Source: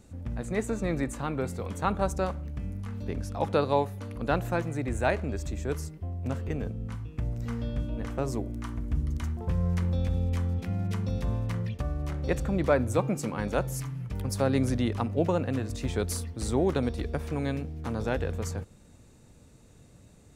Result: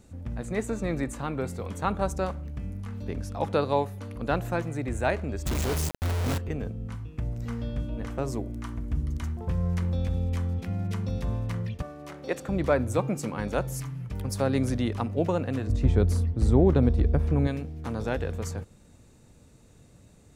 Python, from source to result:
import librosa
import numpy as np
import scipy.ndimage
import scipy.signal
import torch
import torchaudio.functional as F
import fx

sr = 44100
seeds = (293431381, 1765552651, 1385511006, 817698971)

y = fx.quant_companded(x, sr, bits=2, at=(5.46, 6.38))
y = fx.highpass(y, sr, hz=290.0, slope=12, at=(11.82, 12.49))
y = fx.tilt_eq(y, sr, slope=-3.0, at=(15.67, 17.47))